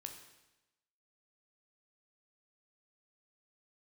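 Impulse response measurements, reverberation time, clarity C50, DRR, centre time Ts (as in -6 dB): 1.0 s, 7.5 dB, 4.0 dB, 24 ms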